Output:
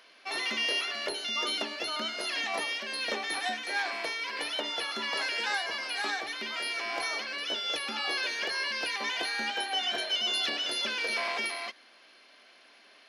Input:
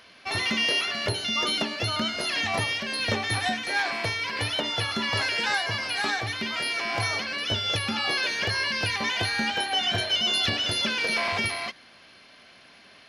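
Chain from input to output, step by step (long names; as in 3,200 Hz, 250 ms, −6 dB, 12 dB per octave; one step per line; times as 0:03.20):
high-pass filter 280 Hz 24 dB per octave
level −5 dB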